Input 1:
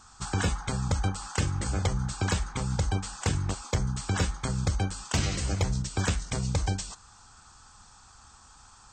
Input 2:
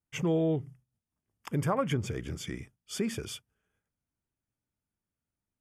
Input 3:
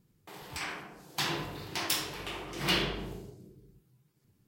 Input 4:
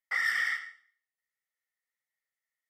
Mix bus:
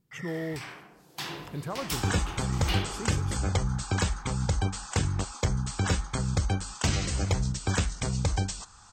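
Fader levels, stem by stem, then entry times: +0.5, -6.5, -4.5, -15.5 dB; 1.70, 0.00, 0.00, 0.00 s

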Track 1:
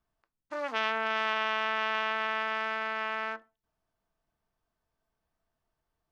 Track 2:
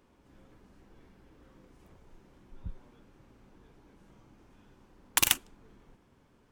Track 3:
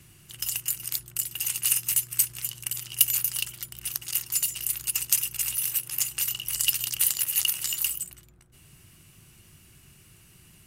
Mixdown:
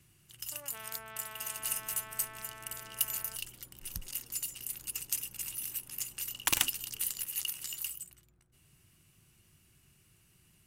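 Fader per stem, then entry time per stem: -18.0, -4.0, -11.0 dB; 0.00, 1.30, 0.00 s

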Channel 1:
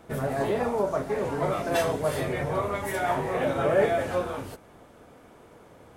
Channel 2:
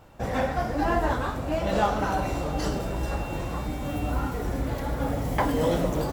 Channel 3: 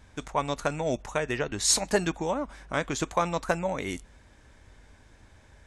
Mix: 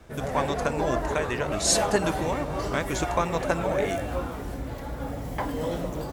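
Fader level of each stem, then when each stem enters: -5.5, -5.5, 0.0 dB; 0.00, 0.00, 0.00 s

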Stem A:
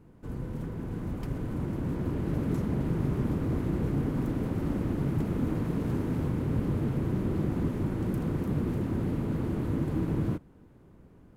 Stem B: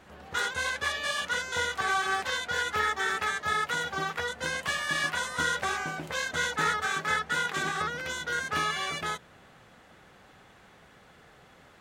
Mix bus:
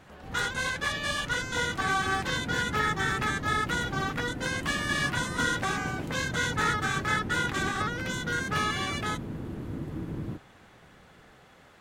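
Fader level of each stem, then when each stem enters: -6.5, 0.0 dB; 0.00, 0.00 s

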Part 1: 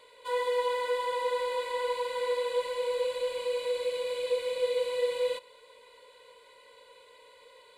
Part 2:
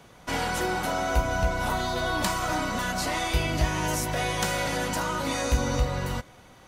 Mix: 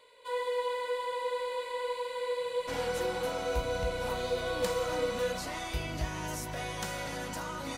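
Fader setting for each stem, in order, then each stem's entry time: -3.5, -9.5 dB; 0.00, 2.40 s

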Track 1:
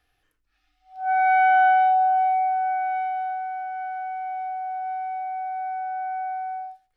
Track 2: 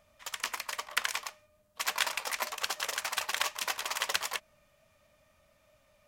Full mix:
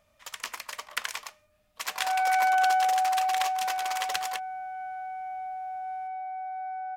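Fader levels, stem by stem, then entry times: -6.0, -1.5 dB; 1.00, 0.00 s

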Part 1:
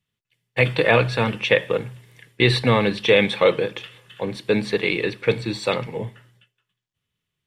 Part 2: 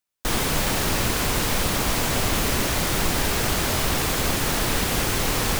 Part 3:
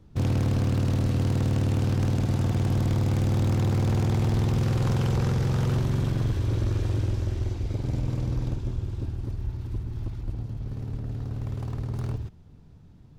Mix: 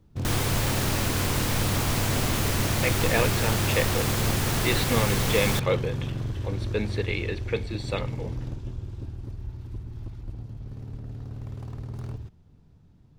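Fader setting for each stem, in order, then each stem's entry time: -8.5, -4.5, -5.0 dB; 2.25, 0.00, 0.00 s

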